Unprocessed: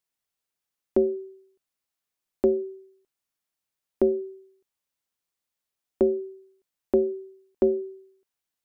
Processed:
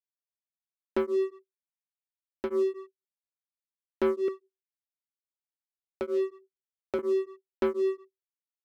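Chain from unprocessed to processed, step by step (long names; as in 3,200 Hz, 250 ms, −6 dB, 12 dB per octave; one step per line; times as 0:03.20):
Butterworth low-pass 960 Hz
noise gate −50 dBFS, range −28 dB
0:04.28–0:06.99: low shelf with overshoot 360 Hz −12 dB, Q 1.5
leveller curve on the samples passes 3
brickwall limiter −24 dBFS, peak gain reduction 11.5 dB
tremolo along a rectified sine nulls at 4.2 Hz
level +3 dB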